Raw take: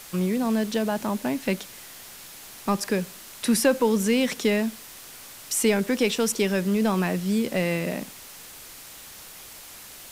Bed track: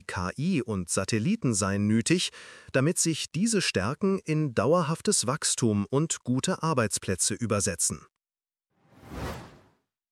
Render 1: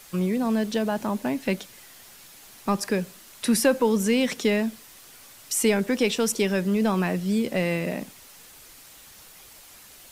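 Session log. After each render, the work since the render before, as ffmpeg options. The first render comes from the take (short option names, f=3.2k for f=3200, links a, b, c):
-af "afftdn=nr=6:nf=-44"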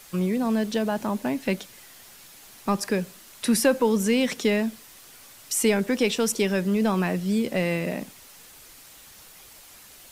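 -af anull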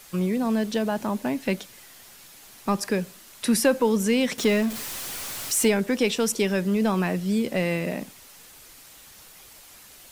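-filter_complex "[0:a]asettb=1/sr,asplit=3[a][b][c];[a]atrim=end=4.384[d];[b]atrim=start=4.38:end=5.68,asetpts=PTS-STARTPTS,afade=t=in:d=0.004:c=qsin,afade=t=out:st=1.296:d=0.004:c=qsin,aeval=exprs='val(0)+0.5*0.0335*sgn(val(0))':c=same[e];[c]atrim=start=5.676[f];[d][e]acrossfade=d=0.004:c1=hsin:c2=qsin[g];[g][f]acrossfade=d=0.004:c1=qsin:c2=hsin"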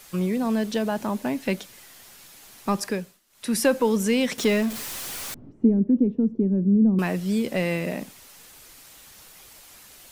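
-filter_complex "[0:a]asettb=1/sr,asplit=3[a][b][c];[a]atrim=end=5.344[d];[b]atrim=start=5.34:end=6.99,asetpts=PTS-STARTPTS,afade=t=in:d=0.004:c=qsin,afade=t=out:st=1.646:d=0.004:c=qsin,lowpass=f=260:t=q:w=2.2[e];[c]atrim=start=6.986[f];[d][e]acrossfade=d=0.004:c1=hsin:c2=qsin[g];[g][f]acrossfade=d=0.004:c1=qsin:c2=hsin,asplit=3[h][i][j];[h]atrim=end=3.2,asetpts=PTS-STARTPTS,afade=t=out:st=2.83:d=0.37:silence=0.11885[k];[i]atrim=start=3.2:end=3.29,asetpts=PTS-STARTPTS,volume=-18.5dB[l];[j]atrim=start=3.29,asetpts=PTS-STARTPTS,afade=t=in:d=0.37:silence=0.11885[m];[k][l][m]concat=n=3:v=0:a=1"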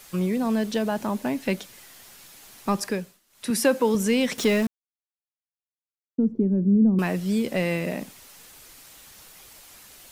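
-filter_complex "[0:a]asettb=1/sr,asplit=3[a][b][c];[a]atrim=end=3.504[d];[b]atrim=start=3.5:end=3.95,asetpts=PTS-STARTPTS,afade=t=in:d=0.004:c=qsin,afade=t=out:st=0.446:d=0.004:c=qsin,highpass=140[e];[c]atrim=start=3.946[f];[d][e]acrossfade=d=0.004:c1=hsin:c2=qsin[g];[g][f]acrossfade=d=0.004:c1=qsin:c2=hsin,asplit=3[h][i][j];[h]atrim=end=4.67,asetpts=PTS-STARTPTS,afade=t=out:st=4.666:d=0.004:c=hsin[k];[i]atrim=start=4.67:end=6.18,asetpts=PTS-STARTPTS,volume=0[l];[j]atrim=start=6.18,asetpts=PTS-STARTPTS,afade=t=in:d=0.004:c=hsin[m];[k][l][m]concat=n=3:v=0:a=1"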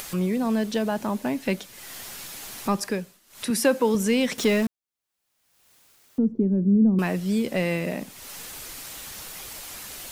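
-af "acompressor=mode=upward:threshold=-28dB:ratio=2.5"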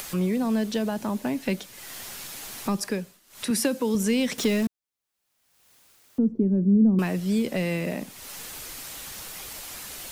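-filter_complex "[0:a]acrossover=split=350|3000[a][b][c];[b]acompressor=threshold=-29dB:ratio=6[d];[a][d][c]amix=inputs=3:normalize=0"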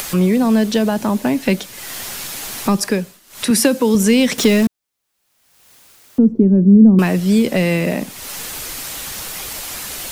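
-af "volume=10.5dB"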